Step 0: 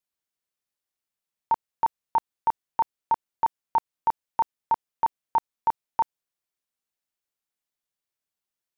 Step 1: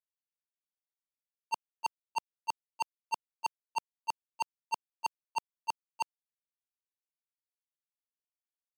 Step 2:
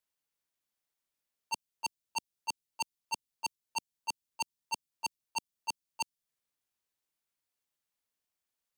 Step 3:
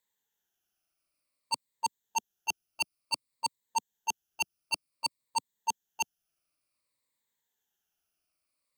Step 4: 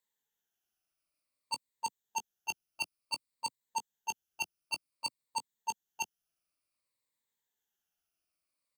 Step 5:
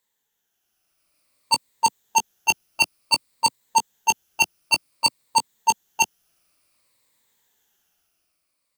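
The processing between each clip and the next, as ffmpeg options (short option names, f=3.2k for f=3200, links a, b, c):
-af "volume=30dB,asoftclip=hard,volume=-30dB,highpass=f=390:p=1,agate=range=-30dB:threshold=-32dB:ratio=16:detection=peak,volume=9dB"
-filter_complex "[0:a]acrossover=split=300|3000[a][b][c];[b]acompressor=threshold=-46dB:ratio=6[d];[a][d][c]amix=inputs=3:normalize=0,volume=7.5dB"
-af "afftfilt=real='re*pow(10,12/40*sin(2*PI*(1*log(max(b,1)*sr/1024/100)/log(2)-(-0.55)*(pts-256)/sr)))':imag='im*pow(10,12/40*sin(2*PI*(1*log(max(b,1)*sr/1024/100)/log(2)-(-0.55)*(pts-256)/sr)))':win_size=1024:overlap=0.75,volume=2.5dB"
-filter_complex "[0:a]asplit=2[a][b];[b]adelay=18,volume=-11dB[c];[a][c]amix=inputs=2:normalize=0,volume=-4.5dB"
-filter_complex "[0:a]dynaudnorm=f=220:g=9:m=9dB,asplit=2[a][b];[b]asoftclip=type=hard:threshold=-29dB,volume=-4dB[c];[a][c]amix=inputs=2:normalize=0,volume=6dB"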